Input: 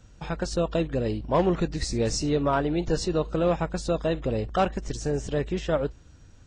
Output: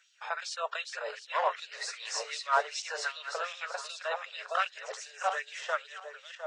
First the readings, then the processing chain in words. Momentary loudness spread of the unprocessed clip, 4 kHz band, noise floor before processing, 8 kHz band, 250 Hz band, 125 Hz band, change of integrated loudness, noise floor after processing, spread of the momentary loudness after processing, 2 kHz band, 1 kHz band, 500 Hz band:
5 LU, −1.0 dB, −52 dBFS, −3.5 dB, below −40 dB, below −40 dB, −7.0 dB, −56 dBFS, 9 LU, +4.0 dB, −1.5 dB, −12.0 dB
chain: feedback delay that plays each chunk backwards 353 ms, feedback 44%, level −5.5 dB
auto-filter high-pass sine 2.6 Hz 810–3,600 Hz
Chebyshev high-pass with heavy ripple 420 Hz, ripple 6 dB

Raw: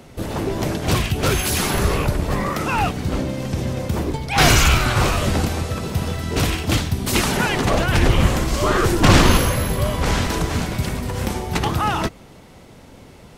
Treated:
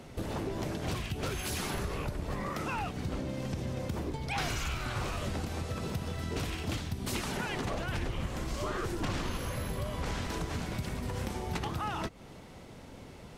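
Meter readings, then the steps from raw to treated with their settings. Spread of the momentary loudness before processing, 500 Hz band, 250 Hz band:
10 LU, −15.0 dB, −15.0 dB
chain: high-shelf EQ 11,000 Hz −6 dB
downward compressor 6 to 1, threshold −27 dBFS, peak gain reduction 18 dB
level −5 dB

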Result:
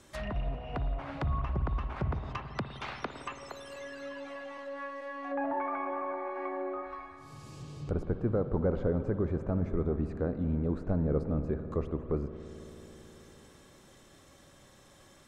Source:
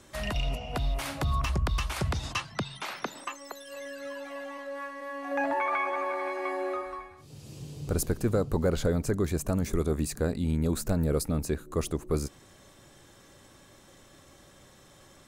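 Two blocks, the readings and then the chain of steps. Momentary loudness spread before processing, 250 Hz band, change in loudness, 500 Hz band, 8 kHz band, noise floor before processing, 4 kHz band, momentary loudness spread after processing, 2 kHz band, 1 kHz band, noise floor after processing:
12 LU, −2.5 dB, −3.5 dB, −3.0 dB, below −15 dB, −56 dBFS, −12.0 dB, 15 LU, −7.5 dB, −4.0 dB, −58 dBFS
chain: treble cut that deepens with the level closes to 1,200 Hz, closed at −28 dBFS
spring reverb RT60 4 s, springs 54 ms, chirp 25 ms, DRR 8.5 dB
level −3 dB

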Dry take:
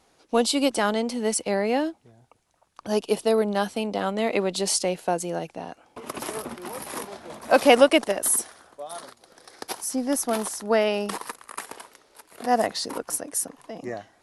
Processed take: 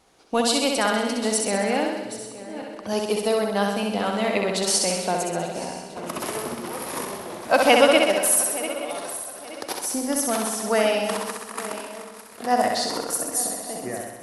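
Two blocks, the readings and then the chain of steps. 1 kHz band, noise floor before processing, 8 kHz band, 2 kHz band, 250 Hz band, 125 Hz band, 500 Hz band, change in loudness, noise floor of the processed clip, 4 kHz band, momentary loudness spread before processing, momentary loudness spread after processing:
+2.5 dB, −63 dBFS, +4.0 dB, +4.0 dB, +0.5 dB, +2.0 dB, +1.0 dB, +1.5 dB, −41 dBFS, +4.0 dB, 17 LU, 15 LU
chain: feedback delay that plays each chunk backwards 437 ms, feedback 54%, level −13.5 dB
dynamic equaliser 350 Hz, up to −5 dB, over −32 dBFS, Q 0.82
flutter between parallel walls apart 11.1 metres, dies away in 0.98 s
level +1.5 dB

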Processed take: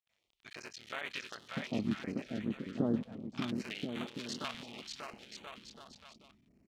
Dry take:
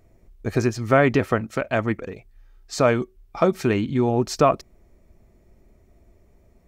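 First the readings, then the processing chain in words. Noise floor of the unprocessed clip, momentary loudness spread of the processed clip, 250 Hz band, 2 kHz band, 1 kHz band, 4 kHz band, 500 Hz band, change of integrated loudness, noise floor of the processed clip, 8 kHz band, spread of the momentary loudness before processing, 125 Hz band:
−57 dBFS, 16 LU, −12.0 dB, −15.5 dB, −21.5 dB, −6.0 dB, −22.5 dB, −17.5 dB, −81 dBFS, −14.0 dB, 13 LU, −18.5 dB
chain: sub-harmonics by changed cycles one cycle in 3, muted
noise gate with hold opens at −48 dBFS
downward compressor 2 to 1, threshold −26 dBFS, peak gain reduction 8 dB
auto-filter band-pass square 0.33 Hz 230–3,300 Hz
on a send: bouncing-ball delay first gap 590 ms, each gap 0.75×, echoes 5
on the sum: notch on a step sequencer 5.4 Hz 340–5,100 Hz
level +2 dB

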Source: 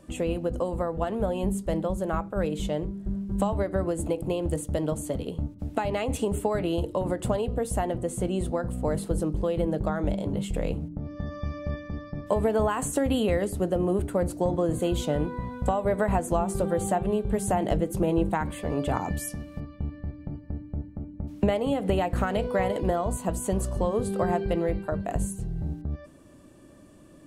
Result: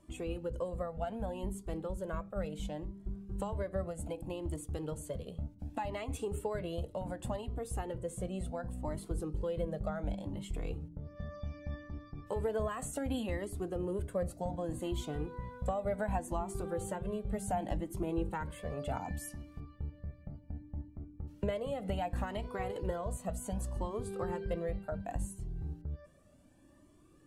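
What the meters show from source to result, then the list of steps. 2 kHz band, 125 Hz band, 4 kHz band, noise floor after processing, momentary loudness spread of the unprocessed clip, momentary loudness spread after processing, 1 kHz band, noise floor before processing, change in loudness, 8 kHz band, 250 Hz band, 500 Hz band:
−10.0 dB, −9.5 dB, −10.0 dB, −60 dBFS, 10 LU, 8 LU, −10.5 dB, −50 dBFS, −10.5 dB, −10.5 dB, −12.0 dB, −11.0 dB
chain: flanger whose copies keep moving one way rising 0.67 Hz
level −6 dB

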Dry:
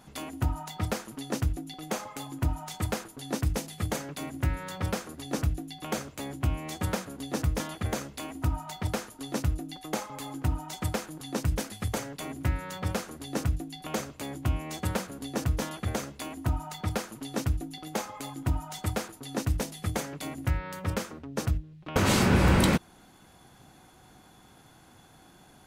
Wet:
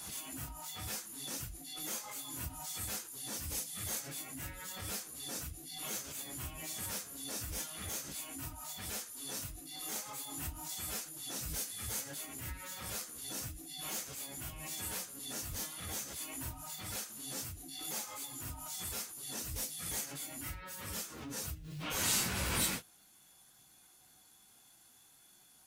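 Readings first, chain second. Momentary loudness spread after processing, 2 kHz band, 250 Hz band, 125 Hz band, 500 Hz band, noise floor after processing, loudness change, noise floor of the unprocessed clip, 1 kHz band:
5 LU, −8.5 dB, −16.5 dB, −17.5 dB, −16.0 dB, −63 dBFS, −7.5 dB, −56 dBFS, −12.0 dB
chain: random phases in long frames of 100 ms
first-order pre-emphasis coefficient 0.9
background raised ahead of every attack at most 37 dB per second
level +1 dB

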